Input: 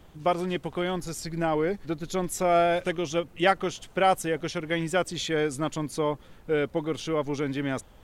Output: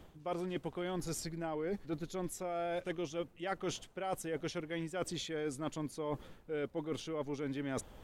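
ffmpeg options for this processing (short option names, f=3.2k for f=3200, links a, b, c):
-af "equalizer=f=380:t=o:w=2.1:g=3,areverse,acompressor=threshold=-33dB:ratio=12,areverse,volume=-2dB"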